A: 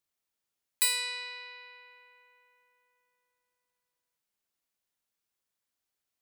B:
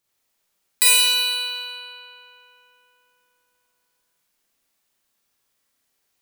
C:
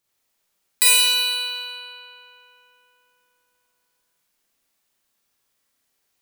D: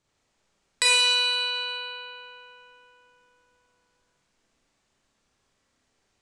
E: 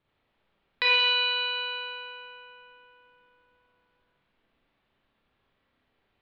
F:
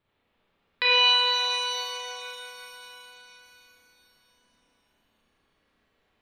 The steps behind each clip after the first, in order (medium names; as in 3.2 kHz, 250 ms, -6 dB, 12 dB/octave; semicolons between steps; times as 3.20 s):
Schroeder reverb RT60 1.2 s, combs from 28 ms, DRR -4.5 dB; trim +8 dB
no audible change
Chebyshev low-pass 7.7 kHz, order 3; tilt EQ -2 dB/octave; in parallel at 0 dB: compression, threshold -33 dBFS, peak gain reduction 13.5 dB
steep low-pass 3.7 kHz 36 dB/octave
pitch-shifted reverb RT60 3.7 s, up +7 st, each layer -8 dB, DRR 2 dB